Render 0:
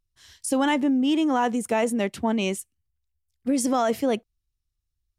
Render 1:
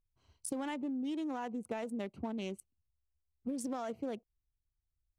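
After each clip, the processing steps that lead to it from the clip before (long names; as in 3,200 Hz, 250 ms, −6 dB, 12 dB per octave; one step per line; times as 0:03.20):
adaptive Wiener filter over 25 samples
downward compressor 6 to 1, threshold −30 dBFS, peak gain reduction 11.5 dB
level −5.5 dB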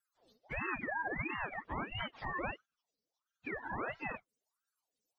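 frequency axis turned over on the octave scale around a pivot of 570 Hz
ring modulator whose carrier an LFO sweeps 910 Hz, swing 65%, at 1.5 Hz
level +4.5 dB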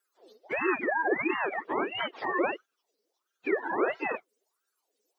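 high-pass with resonance 380 Hz, resonance Q 3.8
level +7.5 dB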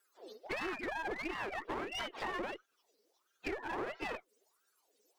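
downward compressor 8 to 1, threshold −38 dBFS, peak gain reduction 16 dB
asymmetric clip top −47.5 dBFS
level +4.5 dB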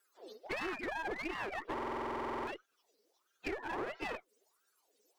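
buffer that repeats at 0:01.73, samples 2,048, times 15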